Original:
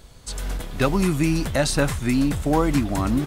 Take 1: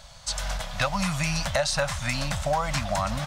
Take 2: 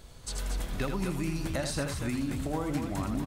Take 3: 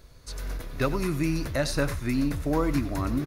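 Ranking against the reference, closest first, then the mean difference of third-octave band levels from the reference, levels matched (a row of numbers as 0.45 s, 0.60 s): 3, 2, 1; 2.0 dB, 4.0 dB, 7.5 dB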